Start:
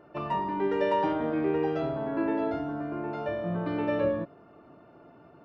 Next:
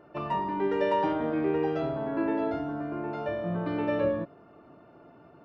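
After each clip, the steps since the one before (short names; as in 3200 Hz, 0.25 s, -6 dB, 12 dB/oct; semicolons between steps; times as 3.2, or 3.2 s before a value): nothing audible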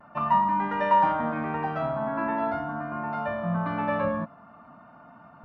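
EQ curve 130 Hz 0 dB, 230 Hz +8 dB, 370 Hz -17 dB, 640 Hz +3 dB, 1100 Hz +11 dB, 3000 Hz -1 dB, 6300 Hz -6 dB; vibrato 0.45 Hz 23 cents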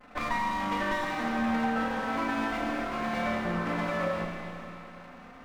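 minimum comb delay 3.9 ms; compressor, threshold -29 dBFS, peak gain reduction 9.5 dB; Schroeder reverb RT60 3.1 s, combs from 27 ms, DRR 0.5 dB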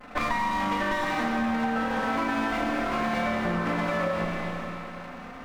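compressor, threshold -31 dBFS, peak gain reduction 7 dB; gain +7.5 dB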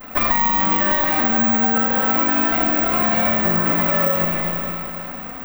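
bit-crush 11-bit; careless resampling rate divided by 2×, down none, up zero stuff; gain +6 dB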